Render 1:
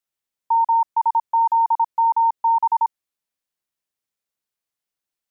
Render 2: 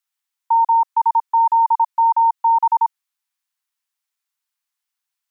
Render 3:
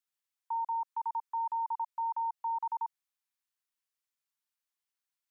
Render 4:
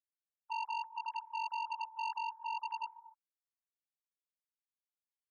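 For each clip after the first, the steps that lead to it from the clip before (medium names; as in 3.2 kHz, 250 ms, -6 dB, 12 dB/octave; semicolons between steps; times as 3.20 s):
steep high-pass 840 Hz 36 dB/octave; trim +4 dB
peak limiter -20.5 dBFS, peak gain reduction 10 dB; trim -8.5 dB
formants replaced by sine waves; reverberation, pre-delay 104 ms, DRR 15.5 dB; transformer saturation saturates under 1.8 kHz; trim -2.5 dB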